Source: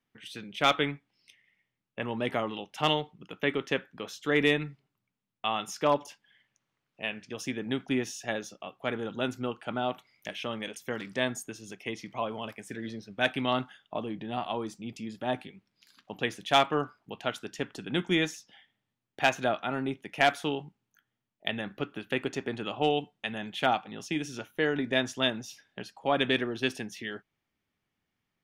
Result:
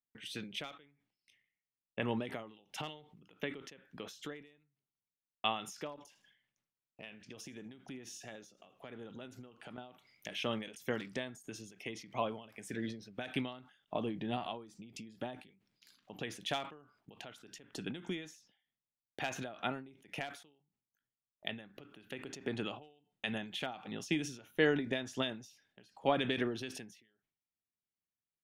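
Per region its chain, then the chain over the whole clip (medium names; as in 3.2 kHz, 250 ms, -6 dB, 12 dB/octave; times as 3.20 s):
5.96–9.78 s: compression 4:1, threshold -46 dBFS + modulated delay 80 ms, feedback 32%, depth 121 cents, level -20 dB
whole clip: gate with hold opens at -58 dBFS; peaking EQ 1.1 kHz -3 dB 1.5 oct; endings held to a fixed fall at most 100 dB/s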